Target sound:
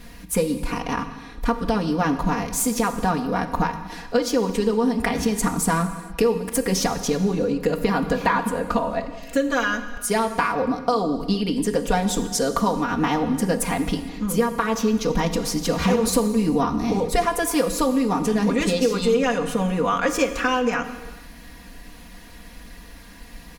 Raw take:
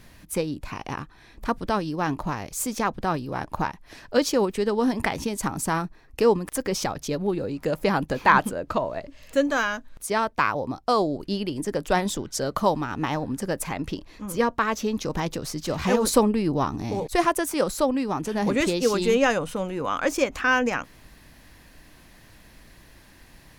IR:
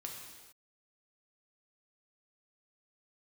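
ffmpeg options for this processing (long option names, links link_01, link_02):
-filter_complex "[0:a]aecho=1:1:4.2:0.95,acompressor=threshold=-22dB:ratio=6,asplit=2[link_01][link_02];[1:a]atrim=start_sample=2205,lowshelf=frequency=390:gain=5[link_03];[link_02][link_03]afir=irnorm=-1:irlink=0,volume=-0.5dB[link_04];[link_01][link_04]amix=inputs=2:normalize=0"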